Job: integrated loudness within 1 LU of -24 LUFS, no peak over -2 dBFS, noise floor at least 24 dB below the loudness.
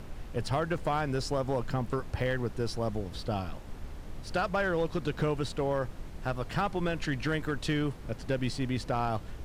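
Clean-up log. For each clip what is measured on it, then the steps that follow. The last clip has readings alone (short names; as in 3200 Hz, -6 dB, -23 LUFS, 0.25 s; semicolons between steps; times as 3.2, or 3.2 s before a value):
clipped 1.1%; flat tops at -22.0 dBFS; noise floor -44 dBFS; noise floor target -57 dBFS; loudness -32.5 LUFS; peak -22.0 dBFS; loudness target -24.0 LUFS
-> clip repair -22 dBFS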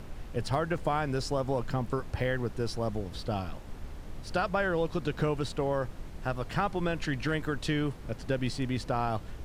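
clipped 0.0%; noise floor -44 dBFS; noise floor target -56 dBFS
-> noise print and reduce 12 dB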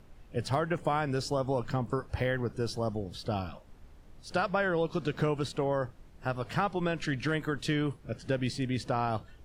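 noise floor -55 dBFS; noise floor target -56 dBFS
-> noise print and reduce 6 dB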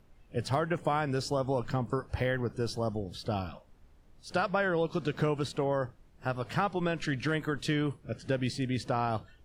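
noise floor -60 dBFS; loudness -32.0 LUFS; peak -16.5 dBFS; loudness target -24.0 LUFS
-> gain +8 dB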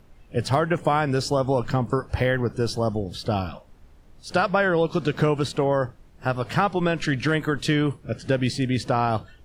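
loudness -24.0 LUFS; peak -8.5 dBFS; noise floor -52 dBFS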